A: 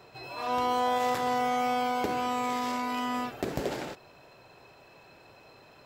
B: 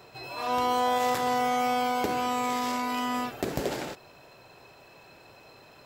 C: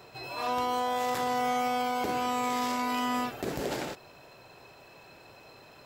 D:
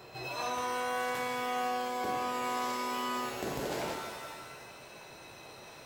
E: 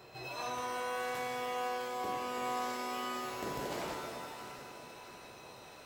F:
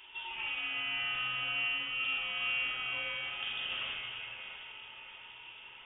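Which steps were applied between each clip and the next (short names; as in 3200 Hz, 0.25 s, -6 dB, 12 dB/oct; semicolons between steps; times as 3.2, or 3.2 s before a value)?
high shelf 5800 Hz +5.5 dB; gain +1.5 dB
limiter -20 dBFS, peak gain reduction 6.5 dB
compressor 3:1, threshold -35 dBFS, peak gain reduction 8 dB; shimmer reverb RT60 1.4 s, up +7 st, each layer -2 dB, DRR 4 dB
echo with dull and thin repeats by turns 0.332 s, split 980 Hz, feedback 72%, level -8.5 dB; gain -4 dB
small resonant body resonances 780/2200 Hz, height 11 dB, ringing for 65 ms; inverted band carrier 3500 Hz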